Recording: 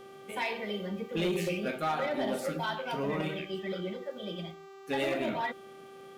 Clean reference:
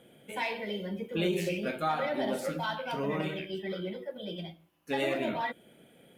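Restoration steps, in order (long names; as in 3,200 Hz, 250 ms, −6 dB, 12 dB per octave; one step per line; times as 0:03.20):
clipped peaks rebuilt −24.5 dBFS
click removal
hum removal 390.1 Hz, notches 20
notch filter 1,200 Hz, Q 30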